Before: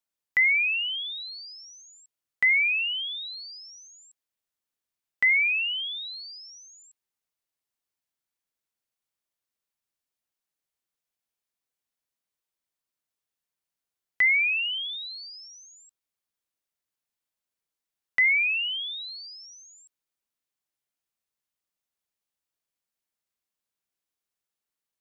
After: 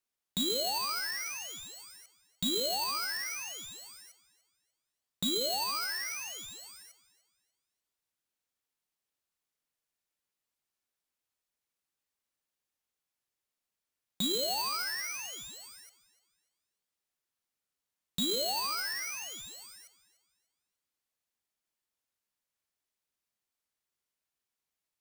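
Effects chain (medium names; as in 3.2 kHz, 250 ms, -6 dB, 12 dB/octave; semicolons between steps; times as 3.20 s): low-pass that closes with the level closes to 2.9 kHz, closed at -21.5 dBFS; compression 2.5:1, threshold -34 dBFS, peak gain reduction 10 dB; overload inside the chain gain 27.5 dB; echo whose repeats swap between lows and highs 148 ms, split 2.3 kHz, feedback 55%, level -13 dB; on a send at -13 dB: reverberation RT60 0.45 s, pre-delay 6 ms; on the sum: polarity switched at an audio rate 1.8 kHz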